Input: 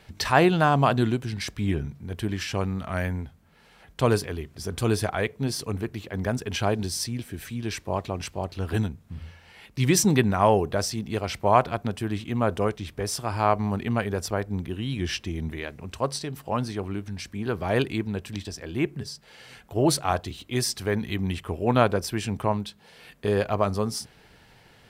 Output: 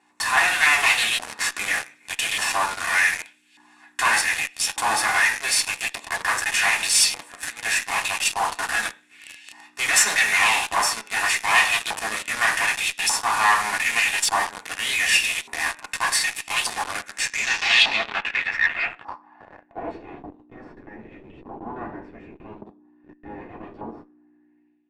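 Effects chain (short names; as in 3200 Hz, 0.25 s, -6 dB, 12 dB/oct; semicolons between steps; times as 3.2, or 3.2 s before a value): minimum comb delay 1.1 ms; modulation noise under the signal 35 dB; bell 170 Hz -8.5 dB 1.3 oct; buzz 60 Hz, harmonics 6, -41 dBFS -4 dB/oct; RIAA curve recording; reverb RT60 0.45 s, pre-delay 3 ms, DRR -2 dB; LFO band-pass saw up 0.84 Hz 930–3200 Hz; AGC gain up to 8 dB; in parallel at -10 dB: fuzz box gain 45 dB, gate -37 dBFS; on the sum: low-pass sweep 10000 Hz -> 340 Hz, 17.09–20.15; core saturation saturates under 1900 Hz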